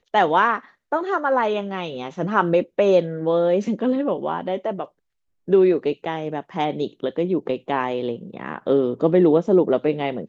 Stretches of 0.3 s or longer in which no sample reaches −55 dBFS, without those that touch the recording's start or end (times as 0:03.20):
0:04.91–0:05.48